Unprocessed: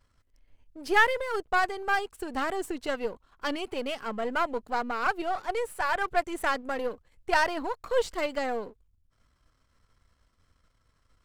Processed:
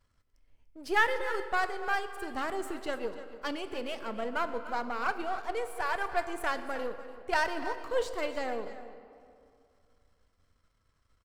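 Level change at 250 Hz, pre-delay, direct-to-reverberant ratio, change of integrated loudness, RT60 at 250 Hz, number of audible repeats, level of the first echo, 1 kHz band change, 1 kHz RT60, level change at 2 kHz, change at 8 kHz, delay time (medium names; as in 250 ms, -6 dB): -4.0 dB, 4 ms, 8.0 dB, -4.0 dB, 2.8 s, 1, -14.5 dB, -4.0 dB, 2.3 s, -4.0 dB, -4.0 dB, 293 ms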